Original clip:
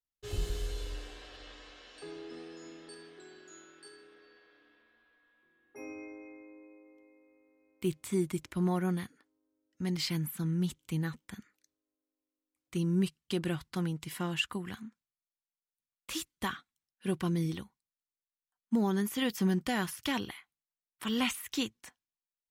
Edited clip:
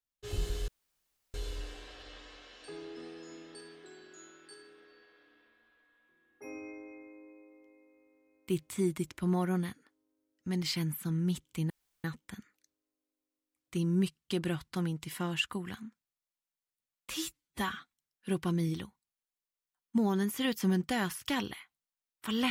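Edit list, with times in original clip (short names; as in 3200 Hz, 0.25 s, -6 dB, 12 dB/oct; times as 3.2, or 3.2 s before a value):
0.68 insert room tone 0.66 s
11.04 insert room tone 0.34 s
16.11–16.56 stretch 1.5×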